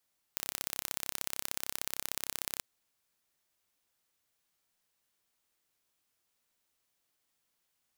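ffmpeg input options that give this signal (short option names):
-f lavfi -i "aevalsrc='0.501*eq(mod(n,1328),0)*(0.5+0.5*eq(mod(n,2656),0))':d=2.24:s=44100"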